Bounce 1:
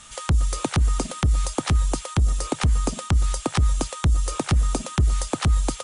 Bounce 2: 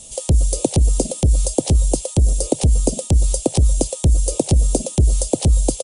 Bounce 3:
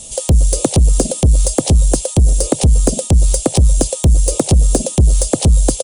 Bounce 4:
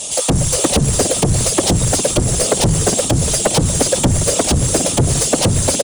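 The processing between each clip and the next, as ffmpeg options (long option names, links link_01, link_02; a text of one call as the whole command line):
ffmpeg -i in.wav -af "firequalizer=gain_entry='entry(190,0);entry(550,7);entry(1300,-28);entry(2700,-8);entry(4600,-2);entry(9000,6)':delay=0.05:min_phase=1,volume=5dB" out.wav
ffmpeg -i in.wav -af "acontrast=89,volume=-1dB" out.wav
ffmpeg -i in.wav -filter_complex "[0:a]asplit=7[link_01][link_02][link_03][link_04][link_05][link_06][link_07];[link_02]adelay=407,afreqshift=-75,volume=-15dB[link_08];[link_03]adelay=814,afreqshift=-150,volume=-19.9dB[link_09];[link_04]adelay=1221,afreqshift=-225,volume=-24.8dB[link_10];[link_05]adelay=1628,afreqshift=-300,volume=-29.6dB[link_11];[link_06]adelay=2035,afreqshift=-375,volume=-34.5dB[link_12];[link_07]adelay=2442,afreqshift=-450,volume=-39.4dB[link_13];[link_01][link_08][link_09][link_10][link_11][link_12][link_13]amix=inputs=7:normalize=0,afftfilt=real='hypot(re,im)*cos(2*PI*random(0))':imag='hypot(re,im)*sin(2*PI*random(1))':win_size=512:overlap=0.75,asplit=2[link_14][link_15];[link_15]highpass=frequency=720:poles=1,volume=25dB,asoftclip=type=tanh:threshold=-3dB[link_16];[link_14][link_16]amix=inputs=2:normalize=0,lowpass=frequency=4800:poles=1,volume=-6dB" out.wav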